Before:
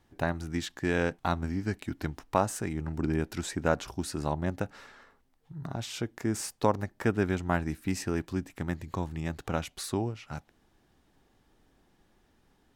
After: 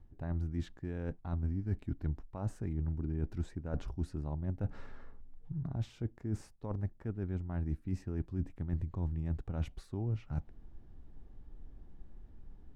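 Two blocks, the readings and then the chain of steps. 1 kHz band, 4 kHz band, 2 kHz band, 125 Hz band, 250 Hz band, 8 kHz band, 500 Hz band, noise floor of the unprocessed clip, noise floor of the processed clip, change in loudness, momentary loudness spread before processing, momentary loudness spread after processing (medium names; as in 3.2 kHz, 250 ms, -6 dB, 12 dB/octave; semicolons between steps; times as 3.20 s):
-18.5 dB, under -15 dB, -20.5 dB, -1.0 dB, -8.0 dB, under -20 dB, -14.0 dB, -68 dBFS, -59 dBFS, -6.5 dB, 9 LU, 20 LU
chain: bass shelf 82 Hz +6 dB; reverse; compression 12:1, threshold -38 dBFS, peak gain reduction 20.5 dB; reverse; tilt EQ -4 dB/octave; trim -4.5 dB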